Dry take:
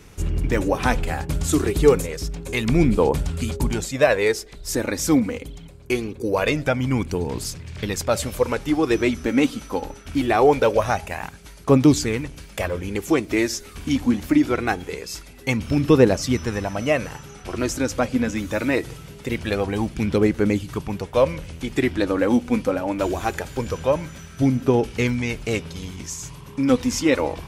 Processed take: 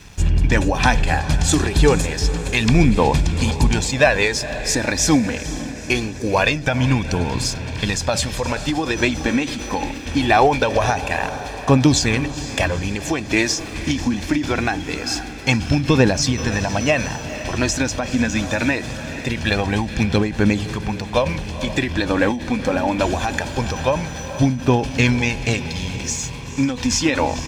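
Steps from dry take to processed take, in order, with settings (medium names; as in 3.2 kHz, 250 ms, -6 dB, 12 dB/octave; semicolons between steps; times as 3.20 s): low-pass 5.7 kHz 12 dB/octave; treble shelf 2.5 kHz +8.5 dB; comb 1.2 ms, depth 45%; in parallel at 0 dB: peak limiter -10 dBFS, peak gain reduction 8 dB; on the sum: crossover distortion -47 dBFS; on a send: echo that smears into a reverb 462 ms, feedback 58%, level -14 dB; on the sum: endings held to a fixed fall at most 100 dB/s; trim -1.5 dB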